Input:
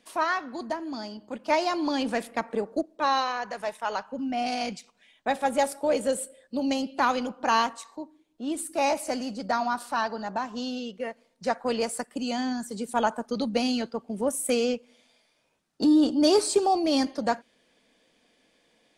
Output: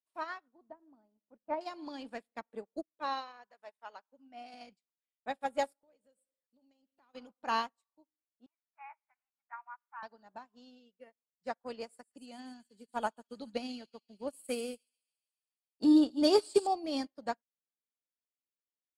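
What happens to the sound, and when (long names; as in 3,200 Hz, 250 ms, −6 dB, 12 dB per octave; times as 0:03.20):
0:00.48–0:01.61: low-pass filter 1,100 Hz
0:03.47–0:04.54: bass and treble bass −8 dB, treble −2 dB
0:05.73–0:07.15: downward compressor 3 to 1, threshold −39 dBFS
0:08.46–0:10.03: elliptic band-pass filter 870–2,300 Hz
0:11.85–0:16.67: delay with a high-pass on its return 141 ms, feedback 70%, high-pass 3,200 Hz, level −7 dB
whole clip: notch filter 6,100 Hz, Q 5.9; expander for the loud parts 2.5 to 1, over −45 dBFS; level −2.5 dB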